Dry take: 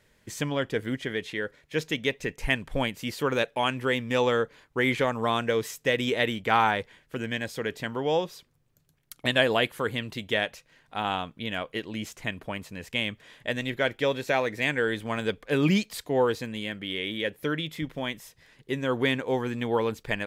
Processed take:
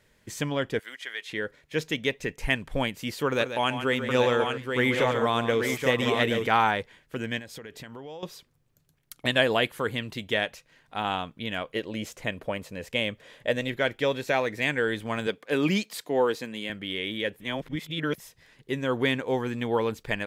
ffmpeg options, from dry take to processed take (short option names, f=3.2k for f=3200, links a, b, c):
-filter_complex "[0:a]asettb=1/sr,asplit=3[a][b][c];[a]atrim=end=0.794[d];[b]atrim=start=0.79:end=1.3,asetpts=PTS-STARTPTS,afade=t=in:d=0.004:c=qsin,afade=t=out:st=0.506:d=0.004:c=qsin,highpass=1.1k[e];[c]atrim=start=1.296[f];[d][e]acrossfade=d=0.004:c1=hsin:c2=qsin[g];[g][f]acrossfade=d=0.004:c1=qsin:c2=hsin,asettb=1/sr,asplit=3[h][i][j];[h]atrim=end=3.264[k];[i]atrim=start=3.26:end=6.47,asetpts=PTS-STARTPTS,afade=t=in:d=0.004:c=qsin,afade=t=out:st=3.206:d=0.004:c=qsin,aecho=1:1:138|658|826:0.335|0.112|0.562,atrim=end_sample=141561[l];[j]atrim=start=6.466[m];[k][l]acrossfade=d=0.004:c1=hsin:c2=qsin[n];[n][m]acrossfade=d=0.004:c1=qsin:c2=hsin,asettb=1/sr,asplit=3[o][p][q];[o]atrim=end=7.394[r];[p]atrim=start=7.39:end=8.23,asetpts=PTS-STARTPTS,afade=t=in:d=0.004:c=qsin,afade=t=out:st=0.836:d=0.004:c=qsin,acompressor=threshold=-38dB:ratio=8:attack=3.2:release=140:knee=1:detection=peak[s];[q]atrim=start=8.226[t];[r][s]acrossfade=d=0.004:c1=hsin:c2=qsin[u];[u][t]acrossfade=d=0.004:c1=qsin:c2=hsin,asettb=1/sr,asplit=3[v][w][x];[v]atrim=end=11.754[y];[w]atrim=start=11.75:end=13.68,asetpts=PTS-STARTPTS,afade=t=in:d=0.004:c=qsin,afade=t=out:st=1.926:d=0.004:c=qsin,equalizer=f=530:w=2.7:g=9[z];[x]atrim=start=13.676[aa];[y][z]acrossfade=d=0.004:c1=hsin:c2=qsin[ab];[ab][aa]acrossfade=d=0.004:c1=qsin:c2=hsin,asettb=1/sr,asplit=3[ac][ad][ae];[ac]atrim=end=15.274[af];[ad]atrim=start=15.27:end=16.7,asetpts=PTS-STARTPTS,afade=t=in:d=0.004:c=qsin,afade=t=out:st=1.426:d=0.004:c=qsin,highpass=200[ag];[ae]atrim=start=16.696[ah];[af][ag]acrossfade=d=0.004:c1=hsin:c2=qsin[ai];[ai][ah]acrossfade=d=0.004:c1=qsin:c2=hsin,asplit=3[aj][ak][al];[aj]atrim=end=17.402[am];[ak]atrim=start=17.398:end=18.182,asetpts=PTS-STARTPTS,areverse[an];[al]atrim=start=18.178[ao];[am][an]acrossfade=d=0.004:c1=hsin:c2=hsin[ap];[ap][ao]acrossfade=d=0.004:c1=hsin:c2=hsin"